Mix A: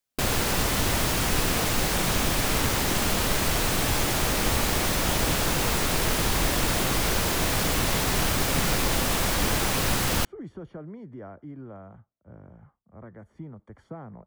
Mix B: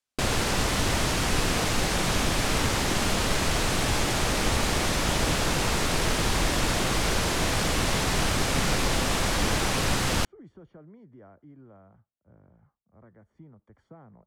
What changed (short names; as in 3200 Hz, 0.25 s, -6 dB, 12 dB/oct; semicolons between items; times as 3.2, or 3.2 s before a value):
speech -9.5 dB; master: add LPF 9000 Hz 12 dB/oct